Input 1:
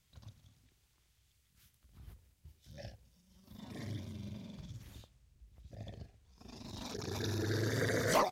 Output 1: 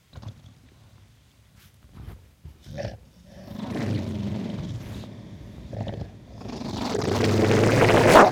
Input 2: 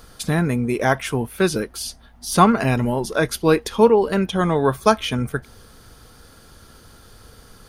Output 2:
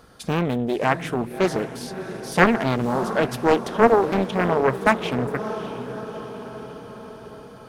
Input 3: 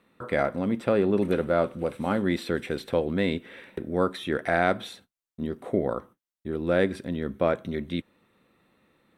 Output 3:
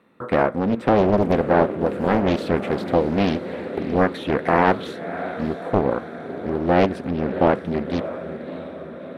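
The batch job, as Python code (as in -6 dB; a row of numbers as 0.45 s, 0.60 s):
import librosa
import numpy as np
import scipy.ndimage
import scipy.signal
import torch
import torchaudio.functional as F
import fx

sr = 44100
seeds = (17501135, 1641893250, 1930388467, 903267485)

p1 = fx.highpass(x, sr, hz=140.0, slope=6)
p2 = fx.high_shelf(p1, sr, hz=2400.0, db=-10.0)
p3 = p2 + fx.echo_diffused(p2, sr, ms=635, feedback_pct=61, wet_db=-11.5, dry=0)
p4 = fx.doppler_dist(p3, sr, depth_ms=0.81)
y = librosa.util.normalize(p4) * 10.0 ** (-2 / 20.0)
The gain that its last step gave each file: +19.0 dB, 0.0 dB, +7.5 dB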